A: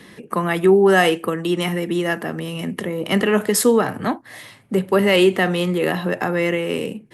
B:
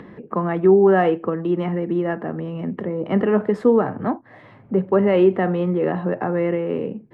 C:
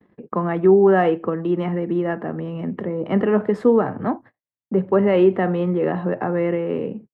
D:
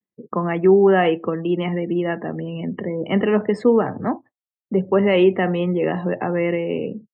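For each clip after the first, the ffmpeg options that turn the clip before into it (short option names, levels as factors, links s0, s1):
-af "lowpass=1100,acompressor=mode=upward:threshold=0.0178:ratio=2.5"
-af "agate=range=0.00112:threshold=0.0126:ratio=16:detection=peak"
-af "aexciter=amount=3.2:drive=5.6:freq=2100,afftdn=nr=35:nf=-37"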